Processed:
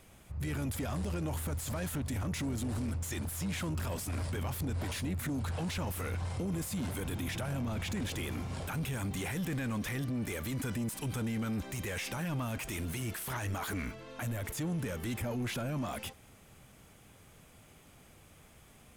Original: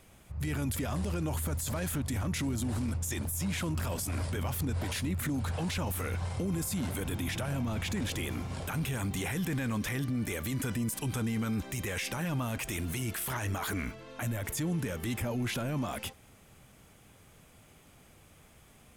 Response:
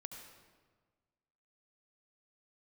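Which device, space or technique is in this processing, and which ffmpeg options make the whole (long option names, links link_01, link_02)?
saturation between pre-emphasis and de-emphasis: -af "highshelf=frequency=4700:gain=10.5,asoftclip=type=tanh:threshold=-29dB,highshelf=frequency=4700:gain=-10.5"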